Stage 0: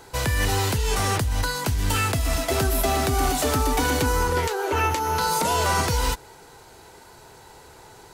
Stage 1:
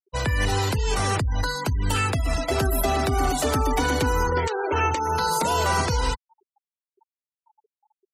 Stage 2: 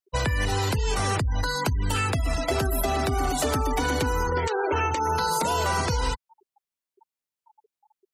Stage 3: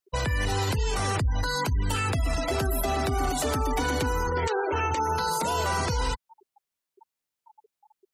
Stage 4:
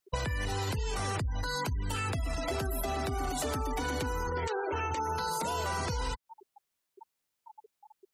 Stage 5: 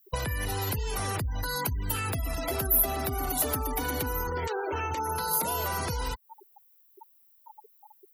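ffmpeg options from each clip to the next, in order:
-af "afftfilt=real='re*gte(hypot(re,im),0.0355)':imag='im*gte(hypot(re,im),0.0355)':win_size=1024:overlap=0.75"
-af "acompressor=threshold=0.0562:ratio=6,volume=1.5"
-af "alimiter=limit=0.0794:level=0:latency=1:release=97,volume=1.5"
-af "acompressor=threshold=0.02:ratio=6,volume=1.5"
-af "aexciter=amount=10.7:drive=5.9:freq=11000,volume=1.19"

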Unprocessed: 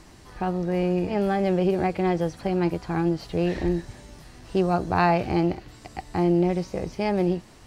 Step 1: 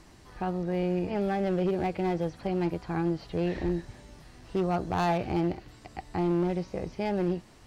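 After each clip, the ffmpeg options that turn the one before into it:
-filter_complex "[0:a]acrossover=split=4700[s0][s1];[s1]acompressor=threshold=0.00126:ratio=4:attack=1:release=60[s2];[s0][s2]amix=inputs=2:normalize=0,asoftclip=type=hard:threshold=0.141,volume=0.596"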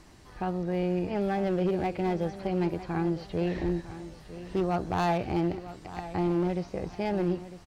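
-af "aecho=1:1:953|1906|2859:0.2|0.0619|0.0192"

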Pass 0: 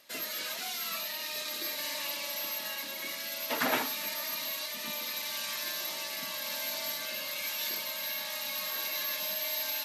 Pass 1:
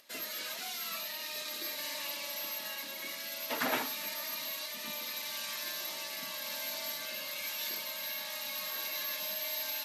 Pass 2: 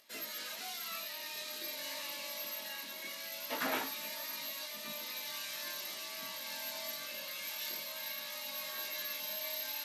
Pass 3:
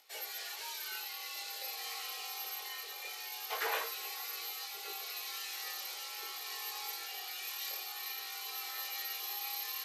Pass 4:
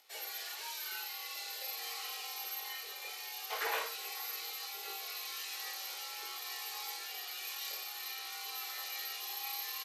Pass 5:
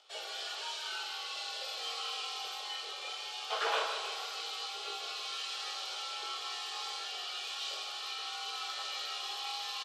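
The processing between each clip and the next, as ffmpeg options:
-af "bandreject=f=50:t=h:w=6,bandreject=f=100:t=h:w=6,bandreject=f=150:t=h:w=6,acompressor=mode=upward:threshold=0.00126:ratio=2.5,volume=0.708"
-af "flanger=delay=18:depth=4:speed=0.23"
-af "afreqshift=190,asoftclip=type=hard:threshold=0.0668"
-filter_complex "[0:a]asplit=2[s0][s1];[s1]adelay=47,volume=0.473[s2];[s0][s2]amix=inputs=2:normalize=0,volume=0.891"
-af "highpass=330,equalizer=f=400:t=q:w=4:g=4,equalizer=f=620:t=q:w=4:g=7,equalizer=f=1300:t=q:w=4:g=7,equalizer=f=2000:t=q:w=4:g=-8,equalizer=f=3200:t=q:w=4:g=8,equalizer=f=6300:t=q:w=4:g=-4,lowpass=f=7700:w=0.5412,lowpass=f=7700:w=1.3066,aecho=1:1:155|310|465|620|775|930:0.398|0.215|0.116|0.0627|0.0339|0.0183,volume=1.19"

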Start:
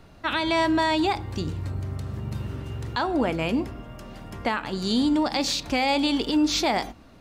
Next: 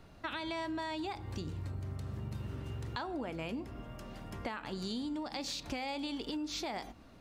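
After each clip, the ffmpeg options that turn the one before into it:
-af "acompressor=threshold=0.0316:ratio=6,volume=0.501"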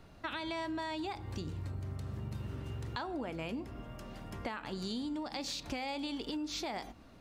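-af anull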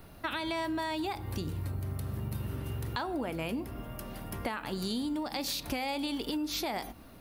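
-af "aexciter=amount=5.3:drive=6.5:freq=9700,volume=1.68"

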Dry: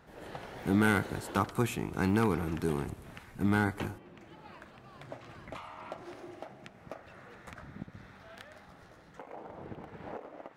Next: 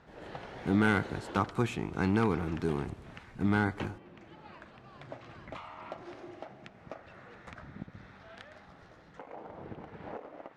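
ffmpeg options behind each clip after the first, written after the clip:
-af "lowpass=5700"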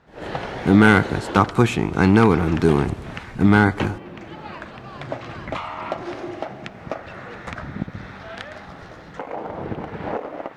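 -af "dynaudnorm=f=120:g=3:m=5.31,volume=1.12"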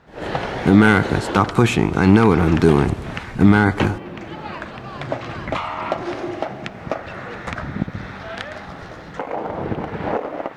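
-af "alimiter=level_in=1.88:limit=0.891:release=50:level=0:latency=1,volume=0.891"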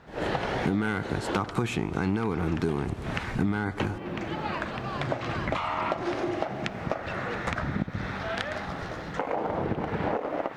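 -af "acompressor=threshold=0.0562:ratio=5"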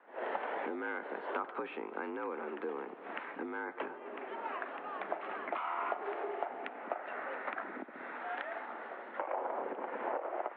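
-filter_complex "[0:a]highpass=f=180:t=q:w=0.5412,highpass=f=180:t=q:w=1.307,lowpass=f=3300:t=q:w=0.5176,lowpass=f=3300:t=q:w=0.7071,lowpass=f=3300:t=q:w=1.932,afreqshift=56,acrossover=split=390 2200:gain=0.178 1 0.2[s0][s1][s2];[s0][s1][s2]amix=inputs=3:normalize=0,volume=0.501"

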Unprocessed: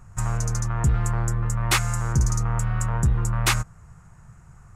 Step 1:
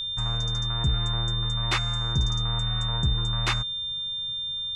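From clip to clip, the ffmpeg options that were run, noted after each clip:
-af "lowpass=4600,aeval=exprs='val(0)+0.0631*sin(2*PI*3600*n/s)':c=same,volume=0.596"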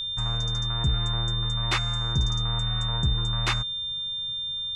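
-af anull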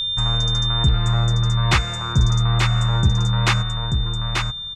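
-af "aecho=1:1:886:0.631,volume=2.37"

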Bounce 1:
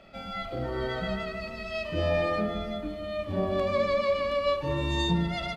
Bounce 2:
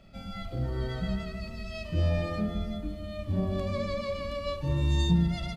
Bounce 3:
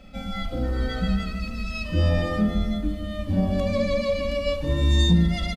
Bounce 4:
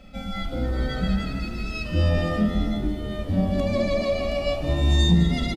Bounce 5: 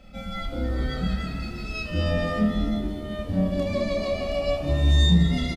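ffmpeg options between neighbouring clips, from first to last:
-af "bass=f=250:g=15,treble=f=4000:g=10,volume=0.376"
-af "aecho=1:1:3.9:0.73,volume=2"
-filter_complex "[0:a]asplit=6[s0][s1][s2][s3][s4][s5];[s1]adelay=206,afreqshift=79,volume=0.224[s6];[s2]adelay=412,afreqshift=158,volume=0.115[s7];[s3]adelay=618,afreqshift=237,volume=0.0582[s8];[s4]adelay=824,afreqshift=316,volume=0.0299[s9];[s5]adelay=1030,afreqshift=395,volume=0.0151[s10];[s0][s6][s7][s8][s9][s10]amix=inputs=6:normalize=0"
-filter_complex "[0:a]asplit=2[s0][s1];[s1]adelay=28,volume=0.631[s2];[s0][s2]amix=inputs=2:normalize=0,volume=0.708"

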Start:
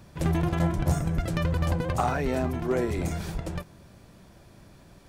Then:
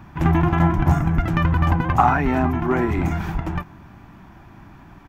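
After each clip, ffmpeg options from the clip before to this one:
-af "firequalizer=gain_entry='entry(190,0);entry(300,3);entry(510,-13);entry(800,6);entry(2800,-2);entry(4200,-13);entry(6400,-11);entry(9100,-21);entry(13000,-8)':delay=0.05:min_phase=1,volume=2.37"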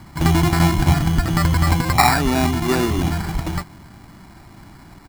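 -af "acrusher=samples=14:mix=1:aa=0.000001,volume=1.19"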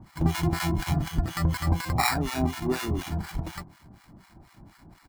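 -filter_complex "[0:a]acrossover=split=900[s0][s1];[s0]aeval=exprs='val(0)*(1-1/2+1/2*cos(2*PI*4.1*n/s))':c=same[s2];[s1]aeval=exprs='val(0)*(1-1/2-1/2*cos(2*PI*4.1*n/s))':c=same[s3];[s2][s3]amix=inputs=2:normalize=0,volume=0.562"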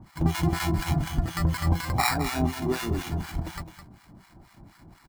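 -af "aecho=1:1:211:0.316"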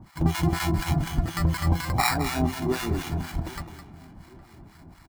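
-filter_complex "[0:a]asplit=2[s0][s1];[s1]adelay=813,lowpass=f=1600:p=1,volume=0.1,asplit=2[s2][s3];[s3]adelay=813,lowpass=f=1600:p=1,volume=0.46,asplit=2[s4][s5];[s5]adelay=813,lowpass=f=1600:p=1,volume=0.46[s6];[s0][s2][s4][s6]amix=inputs=4:normalize=0,volume=1.12"

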